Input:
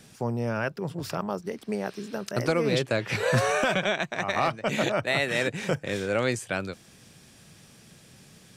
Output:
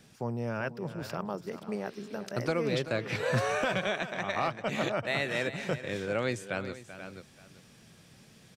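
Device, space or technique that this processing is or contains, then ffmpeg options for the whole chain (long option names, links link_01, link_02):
ducked delay: -filter_complex "[0:a]asplit=3[link_01][link_02][link_03];[link_02]adelay=484,volume=-3dB[link_04];[link_03]apad=whole_len=398891[link_05];[link_04][link_05]sidechaincompress=threshold=-42dB:ratio=5:attack=8.9:release=531[link_06];[link_01][link_06]amix=inputs=2:normalize=0,equalizer=frequency=9900:width=0.73:gain=-5,aecho=1:1:386:0.224,volume=-5dB"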